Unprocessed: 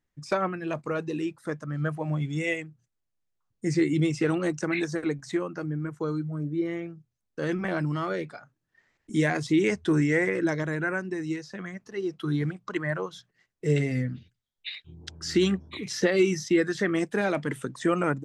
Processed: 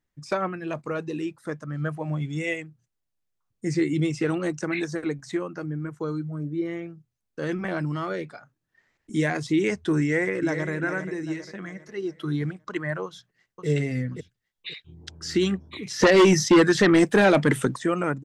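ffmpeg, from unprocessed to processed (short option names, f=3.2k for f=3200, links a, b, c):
-filter_complex "[0:a]asplit=2[a][b];[b]afade=t=in:st=10.02:d=0.01,afade=t=out:st=10.71:d=0.01,aecho=0:1:400|800|1200|1600|2000:0.334965|0.150734|0.0678305|0.0305237|0.0137357[c];[a][c]amix=inputs=2:normalize=0,asplit=2[d][e];[e]afade=t=in:st=13.05:d=0.01,afade=t=out:st=13.67:d=0.01,aecho=0:1:530|1060|1590:0.630957|0.157739|0.0394348[f];[d][f]amix=inputs=2:normalize=0,asplit=3[g][h][i];[g]afade=t=out:st=15.99:d=0.02[j];[h]aeval=exprs='0.282*sin(PI/2*2.24*val(0)/0.282)':c=same,afade=t=in:st=15.99:d=0.02,afade=t=out:st=17.76:d=0.02[k];[i]afade=t=in:st=17.76:d=0.02[l];[j][k][l]amix=inputs=3:normalize=0"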